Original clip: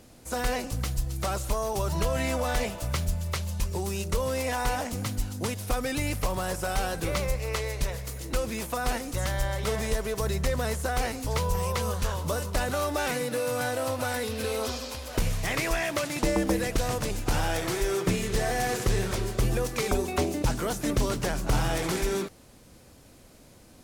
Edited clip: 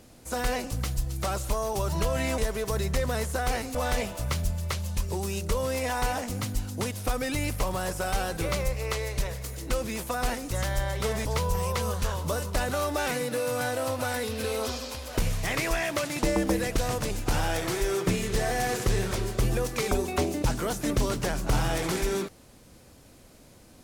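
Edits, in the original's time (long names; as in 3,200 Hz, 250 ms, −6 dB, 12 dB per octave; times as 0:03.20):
0:09.88–0:11.25: move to 0:02.38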